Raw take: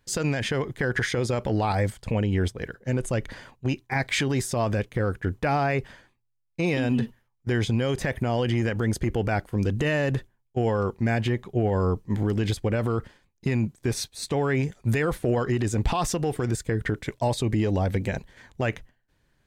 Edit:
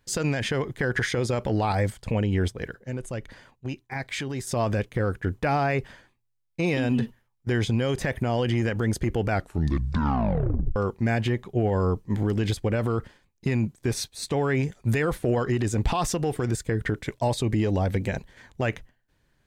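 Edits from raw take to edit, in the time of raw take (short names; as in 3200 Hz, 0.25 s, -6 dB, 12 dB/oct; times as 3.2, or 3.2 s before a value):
2.85–4.47 gain -6.5 dB
9.31 tape stop 1.45 s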